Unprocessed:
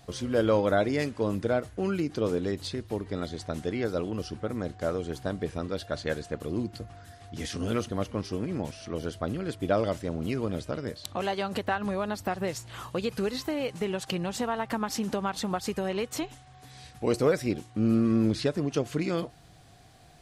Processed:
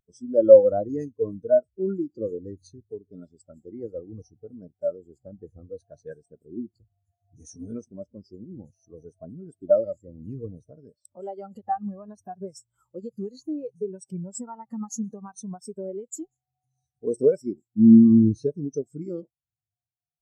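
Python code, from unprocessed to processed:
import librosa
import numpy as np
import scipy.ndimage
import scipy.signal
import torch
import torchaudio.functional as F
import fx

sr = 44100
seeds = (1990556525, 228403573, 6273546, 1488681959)

y = fx.spec_ripple(x, sr, per_octave=1.6, drift_hz=-0.64, depth_db=8)
y = fx.high_shelf_res(y, sr, hz=4800.0, db=12.0, q=1.5)
y = fx.spectral_expand(y, sr, expansion=2.5)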